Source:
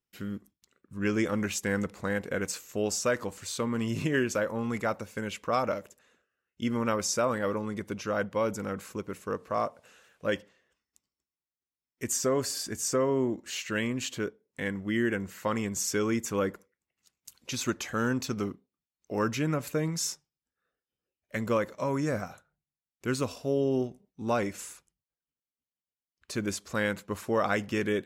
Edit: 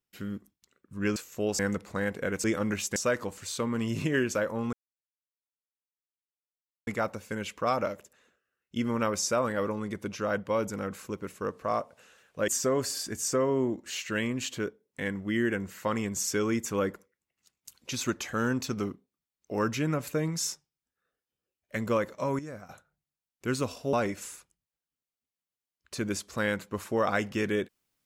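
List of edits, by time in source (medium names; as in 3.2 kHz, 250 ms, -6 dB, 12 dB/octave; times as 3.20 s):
1.16–1.68 s: swap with 2.53–2.96 s
4.73 s: insert silence 2.14 s
10.34–12.08 s: delete
21.99–22.29 s: gain -11.5 dB
23.53–24.30 s: delete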